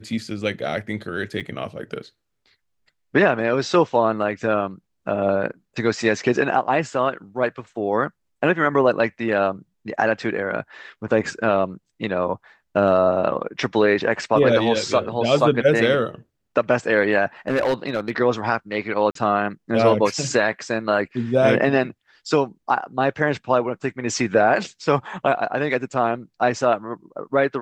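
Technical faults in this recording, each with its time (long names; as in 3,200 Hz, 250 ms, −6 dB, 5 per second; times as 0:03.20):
0:01.40–0:01.41: drop-out 6.9 ms
0:17.48–0:18.11: clipping −15.5 dBFS
0:19.11–0:19.15: drop-out 43 ms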